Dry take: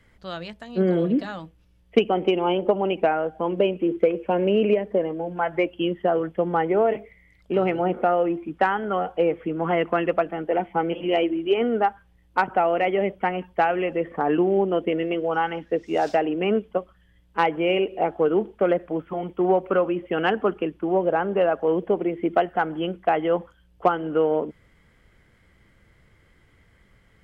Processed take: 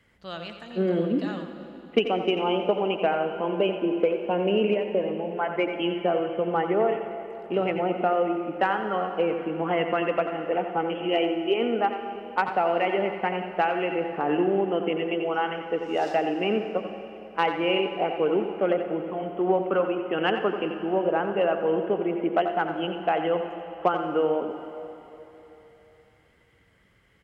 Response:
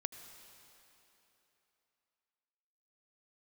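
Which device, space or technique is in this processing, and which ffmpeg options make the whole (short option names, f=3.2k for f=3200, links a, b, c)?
PA in a hall: -filter_complex "[0:a]highpass=f=110:p=1,equalizer=f=2.8k:t=o:w=0.25:g=5,aecho=1:1:88:0.316[a];[1:a]atrim=start_sample=2205[b];[a][b]afir=irnorm=-1:irlink=0,volume=-1.5dB"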